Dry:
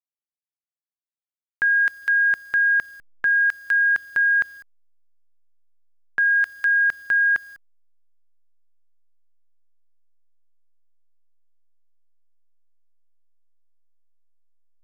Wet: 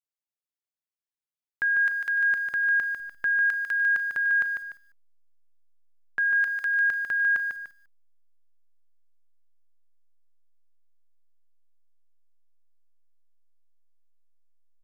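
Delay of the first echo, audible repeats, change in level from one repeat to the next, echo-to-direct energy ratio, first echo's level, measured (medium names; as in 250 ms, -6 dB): 148 ms, 2, -8.0 dB, -5.5 dB, -6.0 dB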